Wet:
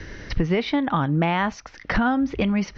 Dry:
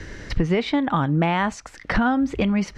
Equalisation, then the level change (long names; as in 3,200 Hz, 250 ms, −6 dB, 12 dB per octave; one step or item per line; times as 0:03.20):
elliptic low-pass filter 5,900 Hz, stop band 40 dB
0.0 dB